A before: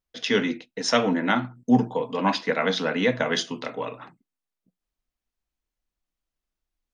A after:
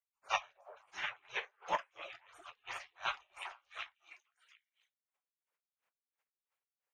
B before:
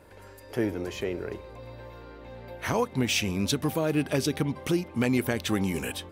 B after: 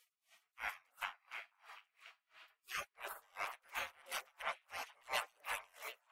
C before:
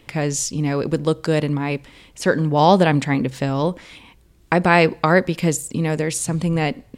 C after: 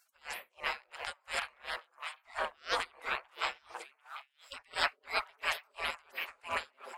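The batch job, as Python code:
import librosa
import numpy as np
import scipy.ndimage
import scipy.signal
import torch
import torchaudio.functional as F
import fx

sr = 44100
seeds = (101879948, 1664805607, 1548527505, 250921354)

y = fx.spec_gate(x, sr, threshold_db=-30, keep='weak')
y = fx.band_shelf(y, sr, hz=1100.0, db=13.0, octaves=2.9)
y = fx.echo_stepped(y, sr, ms=248, hz=400.0, octaves=1.4, feedback_pct=70, wet_db=-1)
y = y * 10.0 ** (-33 * (0.5 - 0.5 * np.cos(2.0 * np.pi * 2.9 * np.arange(len(y)) / sr)) / 20.0)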